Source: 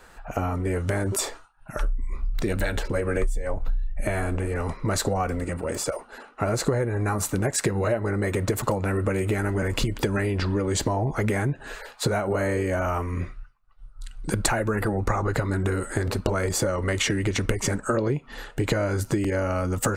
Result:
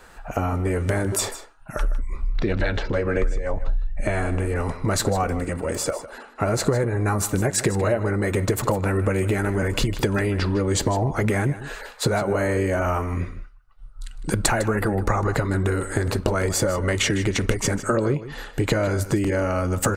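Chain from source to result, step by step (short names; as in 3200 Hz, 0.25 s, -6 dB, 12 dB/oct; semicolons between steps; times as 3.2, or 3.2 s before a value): 2.32–4.36 LPF 4400 Hz -> 9500 Hz 24 dB/oct; echo 0.155 s -14.5 dB; gain +2.5 dB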